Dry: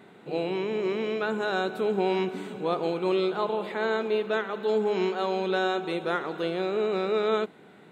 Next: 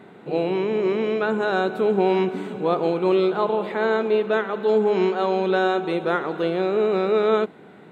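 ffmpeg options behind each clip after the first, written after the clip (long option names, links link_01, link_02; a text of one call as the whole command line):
ffmpeg -i in.wav -af "highshelf=frequency=2700:gain=-8.5,volume=6.5dB" out.wav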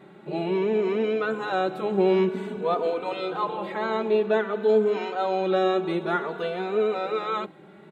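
ffmpeg -i in.wav -filter_complex "[0:a]asplit=2[link_01][link_02];[link_02]adelay=3.2,afreqshift=0.53[link_03];[link_01][link_03]amix=inputs=2:normalize=1" out.wav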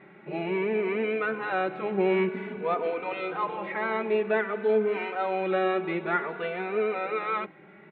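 ffmpeg -i in.wav -af "lowpass=frequency=2200:width_type=q:width=3.3,volume=-4dB" out.wav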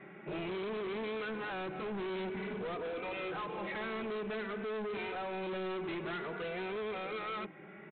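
ffmpeg -i in.wav -filter_complex "[0:a]bandreject=frequency=890:width=19,acrossover=split=350|3000[link_01][link_02][link_03];[link_02]acompressor=threshold=-36dB:ratio=4[link_04];[link_01][link_04][link_03]amix=inputs=3:normalize=0,aresample=8000,asoftclip=type=hard:threshold=-36.5dB,aresample=44100" out.wav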